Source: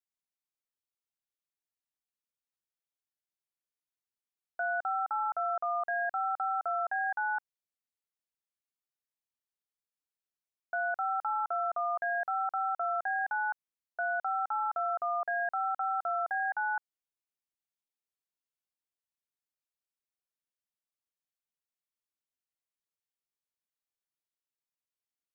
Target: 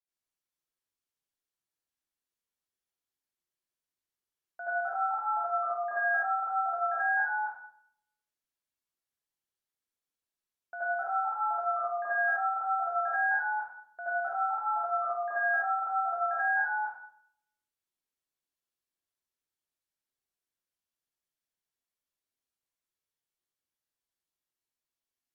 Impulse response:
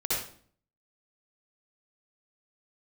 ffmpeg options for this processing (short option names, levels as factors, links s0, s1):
-filter_complex "[1:a]atrim=start_sample=2205,asetrate=33516,aresample=44100[s0];[0:a][s0]afir=irnorm=-1:irlink=0,volume=0.398"